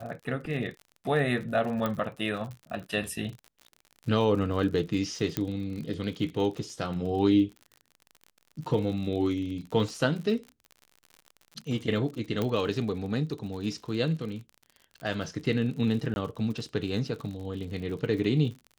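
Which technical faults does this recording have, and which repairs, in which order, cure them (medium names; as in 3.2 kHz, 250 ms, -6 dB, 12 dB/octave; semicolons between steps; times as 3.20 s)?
crackle 52 per s -37 dBFS
1.86 s: pop -16 dBFS
5.37 s: pop -13 dBFS
12.42 s: pop -16 dBFS
16.14–16.16 s: dropout 21 ms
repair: de-click; interpolate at 16.14 s, 21 ms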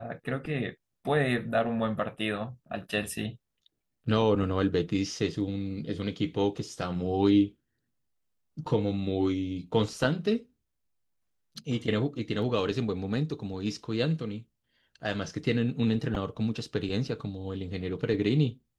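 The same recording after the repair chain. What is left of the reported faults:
12.42 s: pop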